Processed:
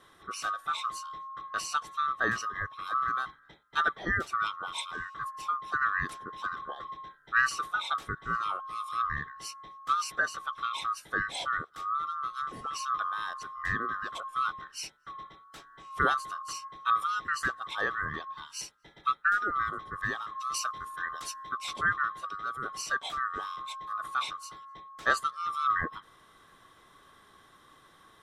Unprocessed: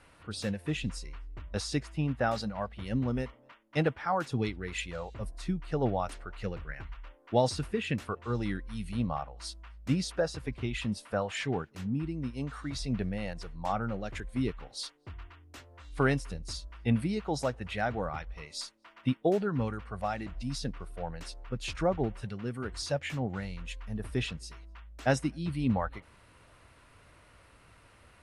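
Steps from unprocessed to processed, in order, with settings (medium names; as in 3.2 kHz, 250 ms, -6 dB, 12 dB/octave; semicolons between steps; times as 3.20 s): split-band scrambler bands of 1 kHz; 20.54–21.52 s: treble shelf 3.9 kHz +9 dB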